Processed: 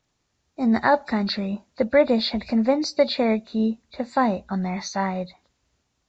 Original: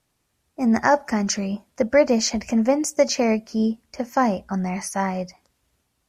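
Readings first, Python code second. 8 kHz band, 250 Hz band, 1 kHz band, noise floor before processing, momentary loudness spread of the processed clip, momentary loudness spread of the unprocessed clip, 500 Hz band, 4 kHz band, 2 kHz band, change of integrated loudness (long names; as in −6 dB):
−13.0 dB, −1.0 dB, −1.0 dB, −72 dBFS, 8 LU, 8 LU, −1.0 dB, +1.5 dB, −1.0 dB, −1.0 dB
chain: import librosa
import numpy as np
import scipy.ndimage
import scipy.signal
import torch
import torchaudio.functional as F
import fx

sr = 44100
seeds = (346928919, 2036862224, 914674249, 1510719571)

y = fx.freq_compress(x, sr, knee_hz=2300.0, ratio=1.5)
y = y * 10.0 ** (-1.0 / 20.0)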